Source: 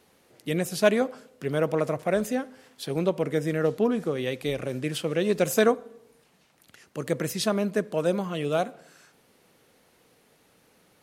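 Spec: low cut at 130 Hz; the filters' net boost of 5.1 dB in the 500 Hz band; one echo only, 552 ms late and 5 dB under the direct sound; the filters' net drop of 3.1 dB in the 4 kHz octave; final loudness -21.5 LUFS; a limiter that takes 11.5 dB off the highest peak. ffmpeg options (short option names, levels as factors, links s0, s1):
-af "highpass=130,equalizer=f=500:t=o:g=6,equalizer=f=4000:t=o:g=-4,alimiter=limit=0.168:level=0:latency=1,aecho=1:1:552:0.562,volume=1.68"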